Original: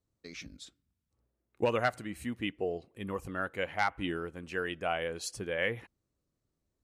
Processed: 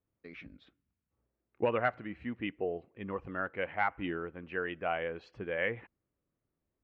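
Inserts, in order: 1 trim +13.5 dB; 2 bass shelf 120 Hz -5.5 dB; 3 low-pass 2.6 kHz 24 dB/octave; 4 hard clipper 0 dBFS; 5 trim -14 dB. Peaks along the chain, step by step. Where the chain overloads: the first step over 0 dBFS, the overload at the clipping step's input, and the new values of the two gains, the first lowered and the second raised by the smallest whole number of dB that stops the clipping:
-3.0 dBFS, -3.0 dBFS, -2.5 dBFS, -2.5 dBFS, -16.5 dBFS; nothing clips

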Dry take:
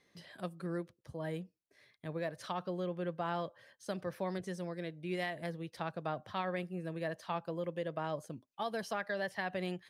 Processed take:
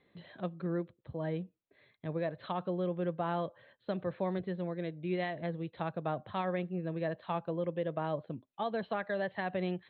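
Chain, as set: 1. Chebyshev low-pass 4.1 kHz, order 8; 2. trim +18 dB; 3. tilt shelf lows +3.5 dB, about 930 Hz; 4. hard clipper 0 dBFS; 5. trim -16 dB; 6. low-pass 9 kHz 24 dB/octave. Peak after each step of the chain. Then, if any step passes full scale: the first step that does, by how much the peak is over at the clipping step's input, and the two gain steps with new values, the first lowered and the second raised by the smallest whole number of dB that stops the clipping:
-23.0 dBFS, -5.0 dBFS, -4.5 dBFS, -4.5 dBFS, -20.5 dBFS, -20.5 dBFS; nothing clips

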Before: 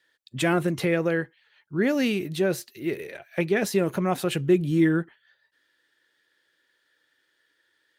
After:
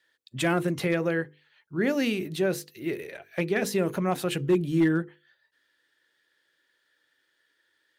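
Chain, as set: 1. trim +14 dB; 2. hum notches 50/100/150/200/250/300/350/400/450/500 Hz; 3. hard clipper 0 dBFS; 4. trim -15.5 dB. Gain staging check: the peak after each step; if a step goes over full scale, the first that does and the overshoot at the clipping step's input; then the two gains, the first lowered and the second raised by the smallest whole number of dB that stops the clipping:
+4.5 dBFS, +4.5 dBFS, 0.0 dBFS, -15.5 dBFS; step 1, 4.5 dB; step 1 +9 dB, step 4 -10.5 dB

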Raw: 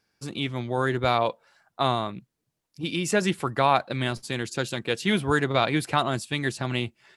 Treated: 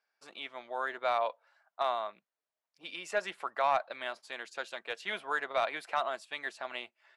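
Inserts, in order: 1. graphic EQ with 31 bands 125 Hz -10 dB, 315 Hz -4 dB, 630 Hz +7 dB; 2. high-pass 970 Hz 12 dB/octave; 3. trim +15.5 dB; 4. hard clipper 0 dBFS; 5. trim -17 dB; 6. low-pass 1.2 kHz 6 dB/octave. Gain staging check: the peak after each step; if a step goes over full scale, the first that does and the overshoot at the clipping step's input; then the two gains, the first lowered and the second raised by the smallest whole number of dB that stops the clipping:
-5.5 dBFS, -9.5 dBFS, +6.0 dBFS, 0.0 dBFS, -17.0 dBFS, -17.5 dBFS; step 3, 6.0 dB; step 3 +9.5 dB, step 5 -11 dB

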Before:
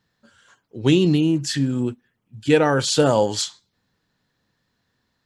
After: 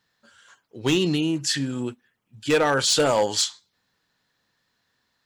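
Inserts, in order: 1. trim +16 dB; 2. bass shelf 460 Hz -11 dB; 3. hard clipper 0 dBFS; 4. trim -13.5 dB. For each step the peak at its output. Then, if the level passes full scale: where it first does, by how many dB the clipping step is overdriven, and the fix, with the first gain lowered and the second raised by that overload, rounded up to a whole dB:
+13.0 dBFS, +9.0 dBFS, 0.0 dBFS, -13.5 dBFS; step 1, 9.0 dB; step 1 +7 dB, step 4 -4.5 dB

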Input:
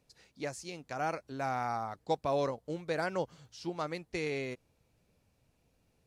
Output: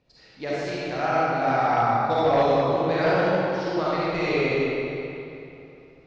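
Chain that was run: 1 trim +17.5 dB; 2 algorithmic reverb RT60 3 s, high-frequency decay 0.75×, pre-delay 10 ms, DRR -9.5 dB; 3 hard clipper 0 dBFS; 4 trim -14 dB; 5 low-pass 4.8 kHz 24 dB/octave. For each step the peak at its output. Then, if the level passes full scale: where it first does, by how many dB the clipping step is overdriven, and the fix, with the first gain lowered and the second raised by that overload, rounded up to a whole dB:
-0.5 dBFS, +6.0 dBFS, 0.0 dBFS, -14.0 dBFS, -13.5 dBFS; step 2, 6.0 dB; step 1 +11.5 dB, step 4 -8 dB

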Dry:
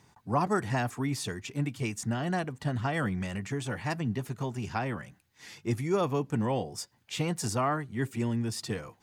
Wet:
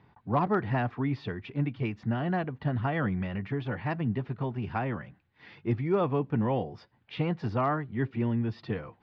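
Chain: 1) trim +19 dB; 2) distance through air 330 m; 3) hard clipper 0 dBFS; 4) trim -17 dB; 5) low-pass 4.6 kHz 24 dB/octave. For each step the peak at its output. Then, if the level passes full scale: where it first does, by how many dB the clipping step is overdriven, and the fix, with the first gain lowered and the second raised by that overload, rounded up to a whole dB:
+4.5 dBFS, +3.0 dBFS, 0.0 dBFS, -17.0 dBFS, -16.5 dBFS; step 1, 3.0 dB; step 1 +16 dB, step 4 -14 dB

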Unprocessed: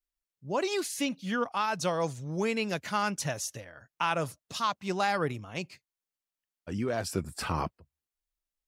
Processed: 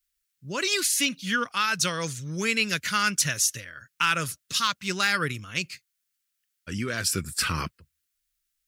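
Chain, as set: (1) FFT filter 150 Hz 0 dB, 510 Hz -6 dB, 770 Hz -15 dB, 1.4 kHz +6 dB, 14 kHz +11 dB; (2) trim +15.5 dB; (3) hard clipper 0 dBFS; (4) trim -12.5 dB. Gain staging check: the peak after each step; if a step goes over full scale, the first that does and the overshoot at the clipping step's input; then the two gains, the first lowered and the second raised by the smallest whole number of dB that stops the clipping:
-11.0 dBFS, +4.5 dBFS, 0.0 dBFS, -12.5 dBFS; step 2, 4.5 dB; step 2 +10.5 dB, step 4 -7.5 dB

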